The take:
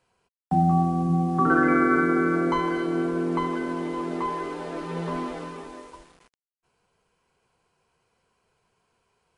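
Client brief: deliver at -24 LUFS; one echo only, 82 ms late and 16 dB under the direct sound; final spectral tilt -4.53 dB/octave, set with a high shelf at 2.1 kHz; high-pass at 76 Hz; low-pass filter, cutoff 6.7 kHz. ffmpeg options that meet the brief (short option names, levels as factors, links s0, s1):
-af "highpass=76,lowpass=6700,highshelf=f=2100:g=-7,aecho=1:1:82:0.158,volume=1.06"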